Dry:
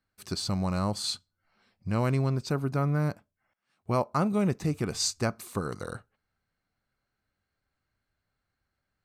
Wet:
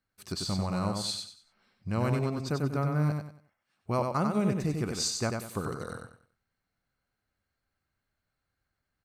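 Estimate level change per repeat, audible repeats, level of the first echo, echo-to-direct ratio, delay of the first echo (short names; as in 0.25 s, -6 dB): -10.5 dB, 3, -4.5 dB, -4.0 dB, 94 ms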